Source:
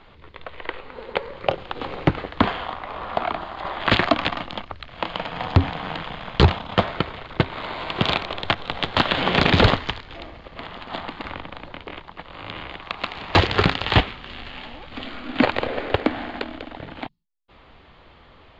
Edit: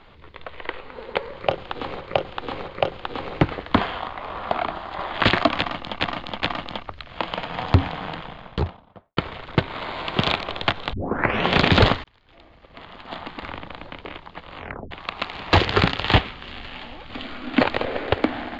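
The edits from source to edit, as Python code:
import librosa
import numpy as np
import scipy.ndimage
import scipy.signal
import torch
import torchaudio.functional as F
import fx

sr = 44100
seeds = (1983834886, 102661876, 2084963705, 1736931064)

y = fx.studio_fade_out(x, sr, start_s=5.62, length_s=1.37)
y = fx.edit(y, sr, fx.repeat(start_s=1.34, length_s=0.67, count=3),
    fx.repeat(start_s=4.24, length_s=0.42, count=3),
    fx.tape_start(start_s=8.75, length_s=0.55),
    fx.fade_in_span(start_s=9.86, length_s=1.58),
    fx.tape_stop(start_s=12.39, length_s=0.34), tone=tone)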